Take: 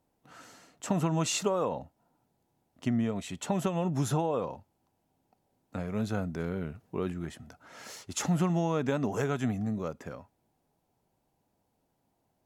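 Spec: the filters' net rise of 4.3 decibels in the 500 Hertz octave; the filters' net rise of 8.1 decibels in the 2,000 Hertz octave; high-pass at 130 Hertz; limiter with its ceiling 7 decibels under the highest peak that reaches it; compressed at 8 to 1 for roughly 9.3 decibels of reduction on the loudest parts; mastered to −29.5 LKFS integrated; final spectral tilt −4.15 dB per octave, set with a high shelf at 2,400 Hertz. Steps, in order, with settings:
high-pass filter 130 Hz
parametric band 500 Hz +4.5 dB
parametric band 2,000 Hz +6 dB
high-shelf EQ 2,400 Hz +9 dB
downward compressor 8 to 1, threshold −30 dBFS
level +7.5 dB
brickwall limiter −17 dBFS

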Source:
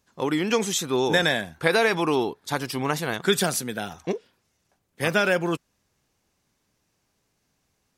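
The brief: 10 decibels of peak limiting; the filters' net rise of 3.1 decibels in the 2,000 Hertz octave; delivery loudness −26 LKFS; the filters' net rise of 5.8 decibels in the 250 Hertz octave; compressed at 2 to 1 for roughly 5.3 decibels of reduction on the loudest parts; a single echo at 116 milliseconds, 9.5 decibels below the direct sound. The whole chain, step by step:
parametric band 250 Hz +8 dB
parametric band 2,000 Hz +4 dB
downward compressor 2 to 1, threshold −23 dBFS
brickwall limiter −18.5 dBFS
single-tap delay 116 ms −9.5 dB
level +2.5 dB

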